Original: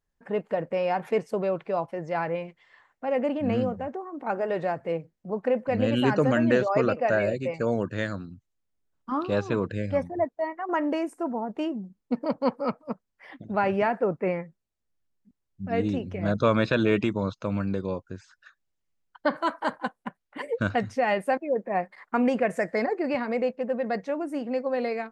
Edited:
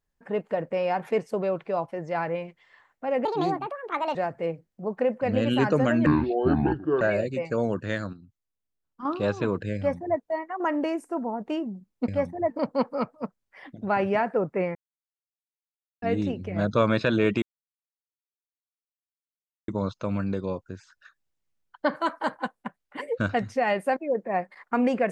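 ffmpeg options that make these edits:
ffmpeg -i in.wav -filter_complex "[0:a]asplit=12[link_01][link_02][link_03][link_04][link_05][link_06][link_07][link_08][link_09][link_10][link_11][link_12];[link_01]atrim=end=3.254[link_13];[link_02]atrim=start=3.25:end=4.61,asetpts=PTS-STARTPTS,asetrate=66591,aresample=44100,atrim=end_sample=39719,asetpts=PTS-STARTPTS[link_14];[link_03]atrim=start=4.606:end=6.524[link_15];[link_04]atrim=start=6.52:end=7.1,asetpts=PTS-STARTPTS,asetrate=26901,aresample=44100,atrim=end_sample=41931,asetpts=PTS-STARTPTS[link_16];[link_05]atrim=start=7.096:end=8.222[link_17];[link_06]atrim=start=8.218:end=9.142,asetpts=PTS-STARTPTS,volume=-7.5dB[link_18];[link_07]atrim=start=9.138:end=12.172[link_19];[link_08]atrim=start=9.848:end=10.272[link_20];[link_09]atrim=start=12.168:end=14.42,asetpts=PTS-STARTPTS,afade=type=out:start_time=2.248:duration=0.004:curve=hsin[link_21];[link_10]atrim=start=14.42:end=15.69,asetpts=PTS-STARTPTS,volume=0[link_22];[link_11]atrim=start=15.69:end=17.09,asetpts=PTS-STARTPTS,afade=type=in:duration=0.004:curve=hsin,afade=type=out:start_time=1.396:duration=0.004:curve=hsin,apad=pad_dur=2.26[link_23];[link_12]atrim=start=17.09,asetpts=PTS-STARTPTS,afade=type=in:duration=0.004:curve=hsin[link_24];[link_13][link_14]acrossfade=duration=0.004:curve1=hsin:curve2=hsin[link_25];[link_25][link_15]acrossfade=duration=0.004:curve1=hsin:curve2=hsin[link_26];[link_26][link_16]acrossfade=duration=0.004:curve1=hsin:curve2=hsin[link_27];[link_27][link_17]acrossfade=duration=0.004:curve1=hsin:curve2=hsin[link_28];[link_28][link_18]acrossfade=duration=0.004:curve1=hsin:curve2=hsin[link_29];[link_29][link_19]acrossfade=duration=0.004:curve1=hsin:curve2=hsin[link_30];[link_30][link_20]acrossfade=duration=0.004:curve1=hsin:curve2=hsin[link_31];[link_21][link_22][link_23][link_24]concat=n=4:v=0:a=1[link_32];[link_31][link_32]acrossfade=duration=0.004:curve1=hsin:curve2=hsin" out.wav

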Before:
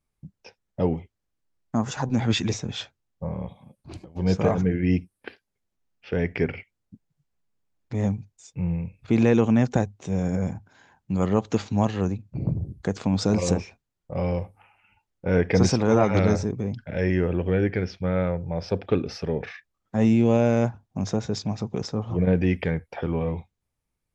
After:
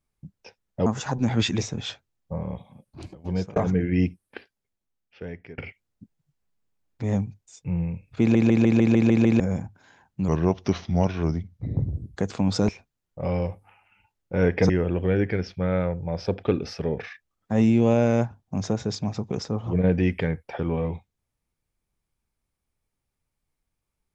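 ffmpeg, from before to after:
ffmpeg -i in.wav -filter_complex "[0:a]asplit=16[link_01][link_02][link_03][link_04][link_05][link_06][link_07][link_08][link_09][link_10][link_11][link_12][link_13][link_14][link_15][link_16];[link_01]atrim=end=0.862[link_17];[link_02]atrim=start=1.768:end=4.47,asetpts=PTS-STARTPTS,afade=type=out:start_time=2.402:duration=0.3[link_18];[link_03]atrim=start=4.47:end=6.49,asetpts=PTS-STARTPTS,afade=type=in:duration=0.004:curve=hsin,afade=type=out:start_time=0.67:duration=1.35:silence=0.0668344[link_19];[link_04]atrim=start=6.49:end=9.262,asetpts=PTS-STARTPTS,afade=type=in:duration=0.004:curve=hsin:silence=0.0668344[link_20];[link_05]atrim=start=9.108:end=9.262[link_21];[link_06]atrim=start=9.108:end=9.262[link_22];[link_07]atrim=start=9.108:end=9.262[link_23];[link_08]atrim=start=9.108:end=9.262[link_24];[link_09]atrim=start=9.108:end=9.262[link_25];[link_10]atrim=start=9.108:end=9.262[link_26];[link_11]atrim=start=9.108:end=9.262[link_27];[link_12]atrim=start=10.308:end=11.194[link_28];[link_13]atrim=start=11.19:end=12.7,asetpts=PTS-STARTPTS,asetrate=37926,aresample=44100,atrim=end_sample=77431,asetpts=PTS-STARTPTS[link_29];[link_14]atrim=start=12.696:end=13.352[link_30];[link_15]atrim=start=13.608:end=15.622[link_31];[link_16]atrim=start=17.128[link_32];[link_18][link_19][link_20]concat=n=3:v=0:a=1[link_33];[link_17][link_33]acrossfade=duration=0.004:curve1=hsin:curve2=hsin[link_34];[link_34][link_21]acrossfade=duration=0.004:curve1=hsin:curve2=hsin[link_35];[link_35][link_22]acrossfade=duration=0.004:curve1=hsin:curve2=hsin[link_36];[link_36][link_23]acrossfade=duration=0.004:curve1=hsin:curve2=hsin[link_37];[link_37][link_24]acrossfade=duration=0.004:curve1=hsin:curve2=hsin[link_38];[link_38][link_25]acrossfade=duration=0.004:curve1=hsin:curve2=hsin[link_39];[link_39][link_26]acrossfade=duration=0.004:curve1=hsin:curve2=hsin[link_40];[link_40][link_27]acrossfade=duration=0.004:curve1=hsin:curve2=hsin[link_41];[link_41][link_28]acrossfade=duration=0.004:curve1=hsin:curve2=hsin[link_42];[link_42][link_29]acrossfade=duration=0.004:curve1=hsin:curve2=hsin[link_43];[link_43][link_30]acrossfade=duration=0.004:curve1=hsin:curve2=hsin[link_44];[link_44][link_31]acrossfade=duration=0.004:curve1=hsin:curve2=hsin[link_45];[link_45][link_32]acrossfade=duration=0.004:curve1=hsin:curve2=hsin" out.wav

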